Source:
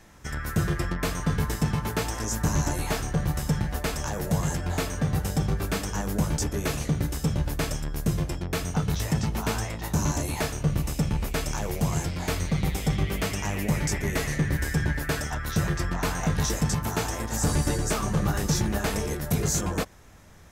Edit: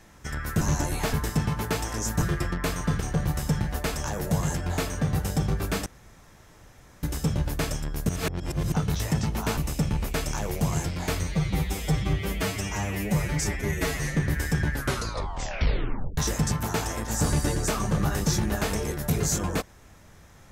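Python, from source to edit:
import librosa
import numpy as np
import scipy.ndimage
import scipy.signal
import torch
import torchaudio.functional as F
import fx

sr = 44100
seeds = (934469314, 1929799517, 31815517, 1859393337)

y = fx.edit(x, sr, fx.swap(start_s=0.61, length_s=0.78, other_s=2.48, other_length_s=0.52),
    fx.room_tone_fill(start_s=5.86, length_s=1.17),
    fx.reverse_span(start_s=8.09, length_s=0.63),
    fx.cut(start_s=9.57, length_s=1.2),
    fx.stretch_span(start_s=12.43, length_s=1.95, factor=1.5),
    fx.tape_stop(start_s=14.94, length_s=1.46), tone=tone)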